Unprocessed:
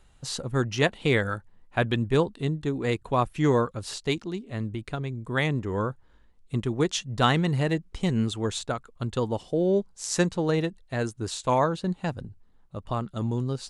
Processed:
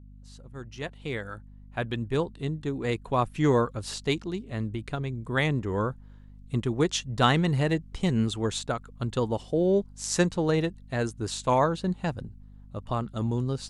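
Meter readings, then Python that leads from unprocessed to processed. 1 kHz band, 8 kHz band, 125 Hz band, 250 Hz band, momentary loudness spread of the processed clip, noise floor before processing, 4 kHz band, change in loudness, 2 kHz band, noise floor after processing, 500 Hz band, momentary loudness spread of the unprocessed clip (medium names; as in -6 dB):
-0.5 dB, -0.5 dB, -1.0 dB, -0.5 dB, 13 LU, -58 dBFS, -1.0 dB, -1.0 dB, -2.5 dB, -49 dBFS, -1.0 dB, 10 LU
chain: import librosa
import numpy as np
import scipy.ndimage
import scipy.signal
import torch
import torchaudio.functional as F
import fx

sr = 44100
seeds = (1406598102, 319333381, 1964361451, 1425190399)

y = fx.fade_in_head(x, sr, length_s=3.66)
y = fx.add_hum(y, sr, base_hz=50, snr_db=20)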